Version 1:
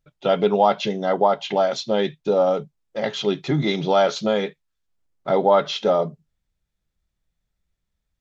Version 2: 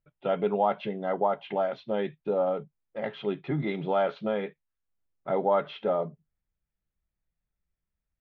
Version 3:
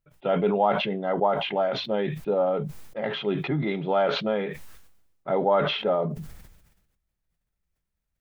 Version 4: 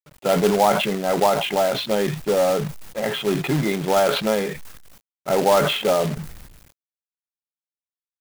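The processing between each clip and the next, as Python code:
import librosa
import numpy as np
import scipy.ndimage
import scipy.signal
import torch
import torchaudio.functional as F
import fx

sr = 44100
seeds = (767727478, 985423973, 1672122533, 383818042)

y1 = scipy.signal.sosfilt(scipy.signal.butter(4, 2700.0, 'lowpass', fs=sr, output='sos'), x)
y1 = y1 * 10.0 ** (-8.0 / 20.0)
y2 = fx.sustainer(y1, sr, db_per_s=53.0)
y2 = y2 * 10.0 ** (2.5 / 20.0)
y3 = fx.quant_companded(y2, sr, bits=4)
y3 = y3 * 10.0 ** (4.5 / 20.0)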